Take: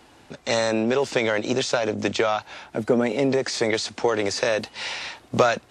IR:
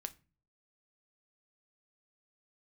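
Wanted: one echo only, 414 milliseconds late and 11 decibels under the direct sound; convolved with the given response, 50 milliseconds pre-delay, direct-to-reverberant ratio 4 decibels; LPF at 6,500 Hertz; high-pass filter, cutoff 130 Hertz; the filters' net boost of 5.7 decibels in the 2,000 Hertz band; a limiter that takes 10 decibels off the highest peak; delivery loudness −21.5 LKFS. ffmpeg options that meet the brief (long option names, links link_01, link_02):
-filter_complex "[0:a]highpass=130,lowpass=6500,equalizer=frequency=2000:width_type=o:gain=7,alimiter=limit=-14dB:level=0:latency=1,aecho=1:1:414:0.282,asplit=2[link_01][link_02];[1:a]atrim=start_sample=2205,adelay=50[link_03];[link_02][link_03]afir=irnorm=-1:irlink=0,volume=-1dB[link_04];[link_01][link_04]amix=inputs=2:normalize=0,volume=2dB"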